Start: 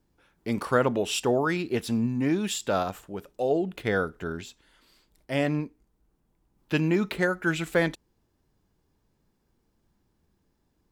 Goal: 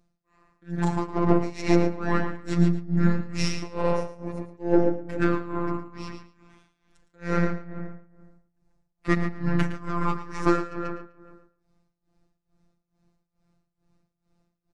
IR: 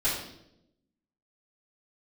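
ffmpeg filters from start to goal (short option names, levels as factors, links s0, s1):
-filter_complex "[0:a]aeval=exprs='0.335*(cos(1*acos(clip(val(0)/0.335,-1,1)))-cos(1*PI/2))+0.0299*(cos(8*acos(clip(val(0)/0.335,-1,1)))-cos(8*PI/2))':c=same,equalizer=f=4300:w=2.7:g=-8.5,asplit=2[s0][s1];[s1]adelay=104,lowpass=f=3900:p=1,volume=0.668,asplit=2[s2][s3];[s3]adelay=104,lowpass=f=3900:p=1,volume=0.52,asplit=2[s4][s5];[s5]adelay=104,lowpass=f=3900:p=1,volume=0.52,asplit=2[s6][s7];[s7]adelay=104,lowpass=f=3900:p=1,volume=0.52,asplit=2[s8][s9];[s9]adelay=104,lowpass=f=3900:p=1,volume=0.52,asplit=2[s10][s11];[s11]adelay=104,lowpass=f=3900:p=1,volume=0.52,asplit=2[s12][s13];[s13]adelay=104,lowpass=f=3900:p=1,volume=0.52[s14];[s2][s4][s6][s8][s10][s12][s14]amix=inputs=7:normalize=0[s15];[s0][s15]amix=inputs=2:normalize=0,tremolo=f=3.1:d=0.96,lowpass=9700,asplit=2[s16][s17];[s17]aecho=0:1:83:0.224[s18];[s16][s18]amix=inputs=2:normalize=0,asetrate=32667,aresample=44100,afftfilt=real='hypot(re,im)*cos(PI*b)':imag='0':win_size=1024:overlap=0.75,volume=2.11"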